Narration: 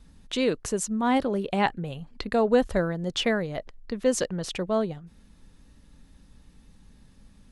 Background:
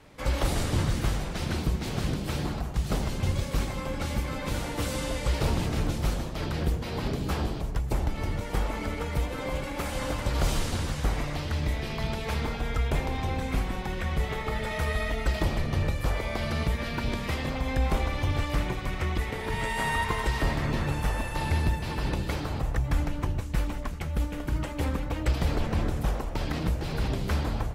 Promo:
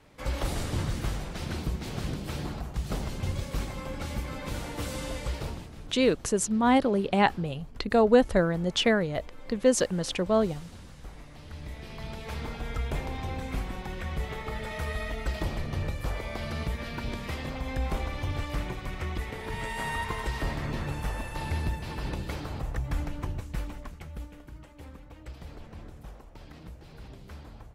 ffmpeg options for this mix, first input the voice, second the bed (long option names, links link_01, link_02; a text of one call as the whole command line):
ffmpeg -i stem1.wav -i stem2.wav -filter_complex "[0:a]adelay=5600,volume=1.5dB[link_01];[1:a]volume=9.5dB,afade=type=out:start_time=5.17:duration=0.53:silence=0.199526,afade=type=in:start_time=11.3:duration=1.41:silence=0.211349,afade=type=out:start_time=23.32:duration=1.22:silence=0.223872[link_02];[link_01][link_02]amix=inputs=2:normalize=0" out.wav